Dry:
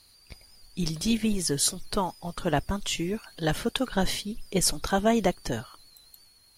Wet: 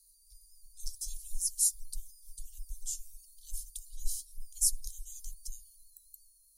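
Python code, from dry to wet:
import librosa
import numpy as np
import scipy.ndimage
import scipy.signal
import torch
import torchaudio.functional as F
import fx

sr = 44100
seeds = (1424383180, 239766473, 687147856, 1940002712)

y = scipy.signal.sosfilt(scipy.signal.cheby2(4, 80, [180.0, 1400.0], 'bandstop', fs=sr, output='sos'), x)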